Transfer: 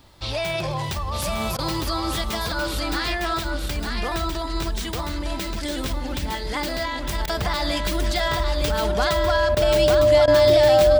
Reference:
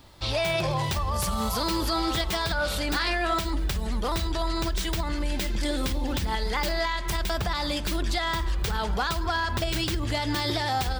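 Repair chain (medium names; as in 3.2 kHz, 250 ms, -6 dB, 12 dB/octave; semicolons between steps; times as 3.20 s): band-stop 600 Hz, Q 30; interpolate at 1.57/7.26/9.55/10.26 s, 15 ms; inverse comb 907 ms -4.5 dB; gain correction -3 dB, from 7.21 s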